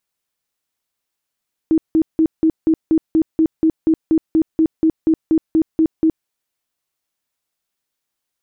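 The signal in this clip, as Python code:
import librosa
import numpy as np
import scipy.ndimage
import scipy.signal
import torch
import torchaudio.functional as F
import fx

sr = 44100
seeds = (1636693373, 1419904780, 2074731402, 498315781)

y = fx.tone_burst(sr, hz=320.0, cycles=22, every_s=0.24, bursts=19, level_db=-10.0)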